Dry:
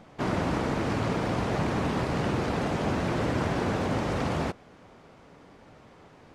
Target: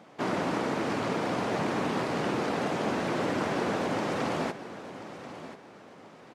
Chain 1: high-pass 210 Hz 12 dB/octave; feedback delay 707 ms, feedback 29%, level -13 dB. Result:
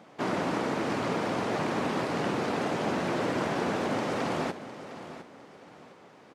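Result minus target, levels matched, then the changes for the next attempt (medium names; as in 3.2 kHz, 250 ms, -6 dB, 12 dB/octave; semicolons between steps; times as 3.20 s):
echo 328 ms early
change: feedback delay 1035 ms, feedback 29%, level -13 dB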